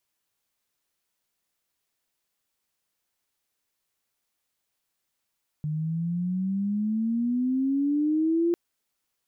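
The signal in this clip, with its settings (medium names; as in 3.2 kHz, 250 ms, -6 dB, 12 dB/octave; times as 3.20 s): gliding synth tone sine, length 2.90 s, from 150 Hz, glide +14.5 st, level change +6 dB, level -20 dB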